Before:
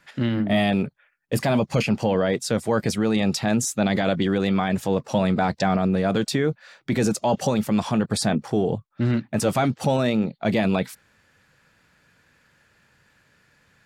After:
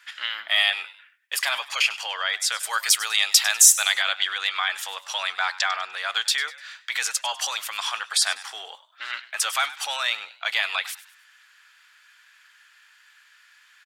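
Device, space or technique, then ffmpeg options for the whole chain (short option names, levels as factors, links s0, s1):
headphones lying on a table: -filter_complex "[0:a]asettb=1/sr,asplit=3[s0][s1][s2];[s0]atrim=end=2.634[s3];[s1]atrim=start=2.63:end=3.92,asetpts=PTS-STARTPTS,afade=t=in:d=0.004:c=qsin,afade=t=out:st=1.286:d=0.004:c=qsin,aemphasis=mode=production:type=50kf[s4];[s2]atrim=start=3.916[s5];[s3][s4]acrossfade=d=0.004:c1=hsin:c2=qsin[s6];[s6][s5]acrossfade=d=0.004:c1=qsin:c2=hsin,highpass=f=1200:w=0.5412,highpass=f=1200:w=1.3066,equalizer=f=3200:t=o:w=0.28:g=6,asplit=4[s7][s8][s9][s10];[s8]adelay=99,afreqshift=88,volume=0.15[s11];[s9]adelay=198,afreqshift=176,volume=0.0537[s12];[s10]adelay=297,afreqshift=264,volume=0.0195[s13];[s7][s11][s12][s13]amix=inputs=4:normalize=0,volume=2.11"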